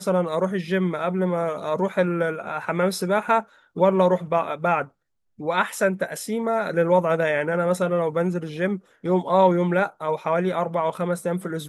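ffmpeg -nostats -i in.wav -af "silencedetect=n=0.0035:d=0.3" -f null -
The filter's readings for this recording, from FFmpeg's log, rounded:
silence_start: 4.89
silence_end: 5.39 | silence_duration: 0.50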